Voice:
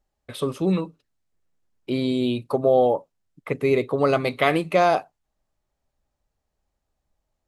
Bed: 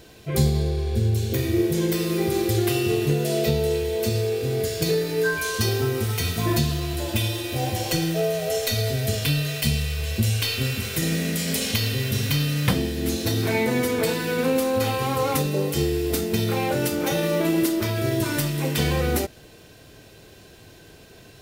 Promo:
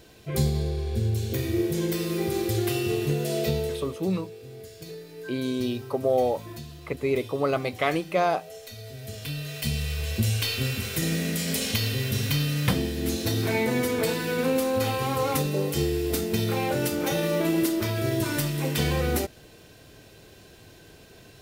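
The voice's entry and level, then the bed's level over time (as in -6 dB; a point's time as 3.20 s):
3.40 s, -5.0 dB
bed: 3.58 s -4 dB
4.08 s -18 dB
8.78 s -18 dB
9.91 s -2.5 dB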